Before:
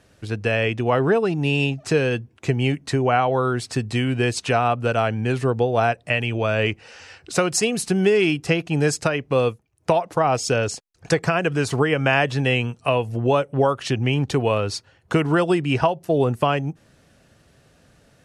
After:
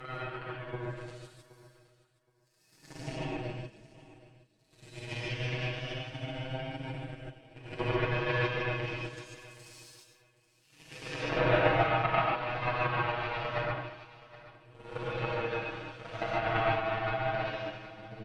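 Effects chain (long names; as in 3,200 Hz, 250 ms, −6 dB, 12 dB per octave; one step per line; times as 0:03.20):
extreme stretch with random phases 11×, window 0.10 s, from 0:03.49
power curve on the samples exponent 3
comb filter 6.3 ms, depth 89%
on a send: repeating echo 771 ms, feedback 17%, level −19 dB
on the sum: treble cut that deepens with the level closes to 2,500 Hz, closed at −27 dBFS
reverb whose tail is shaped and stops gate 170 ms rising, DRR −4.5 dB
level −5.5 dB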